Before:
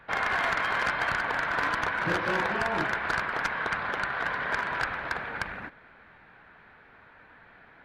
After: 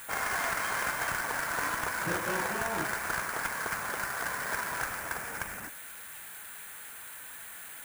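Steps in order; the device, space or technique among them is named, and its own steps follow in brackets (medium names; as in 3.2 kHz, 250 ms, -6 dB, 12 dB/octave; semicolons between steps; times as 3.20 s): budget class-D amplifier (dead-time distortion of 0.083 ms; zero-crossing glitches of -26.5 dBFS); trim -4 dB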